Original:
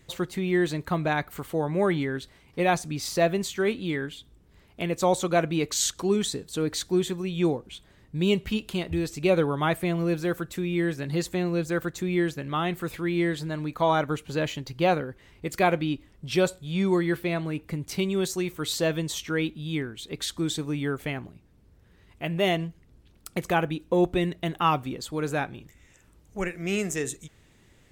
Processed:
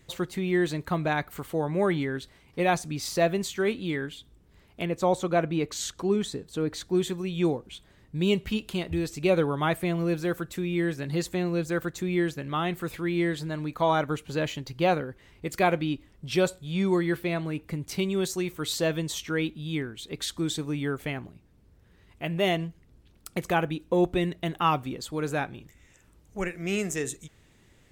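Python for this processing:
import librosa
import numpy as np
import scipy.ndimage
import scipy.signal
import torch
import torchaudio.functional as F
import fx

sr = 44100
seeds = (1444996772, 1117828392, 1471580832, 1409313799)

y = fx.high_shelf(x, sr, hz=3000.0, db=-8.5, at=(4.85, 6.95))
y = y * 10.0 ** (-1.0 / 20.0)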